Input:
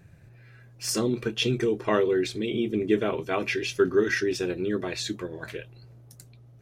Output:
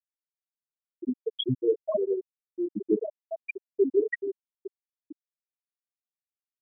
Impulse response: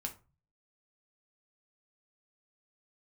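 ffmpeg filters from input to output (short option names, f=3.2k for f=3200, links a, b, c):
-filter_complex "[0:a]asplit=2[a][b];[1:a]atrim=start_sample=2205,highshelf=f=5k:g=11.5[c];[b][c]afir=irnorm=-1:irlink=0,volume=2.5dB[d];[a][d]amix=inputs=2:normalize=0,afftfilt=real='re*gte(hypot(re,im),0.891)':imag='im*gte(hypot(re,im),0.891)':win_size=1024:overlap=0.75,volume=-3.5dB"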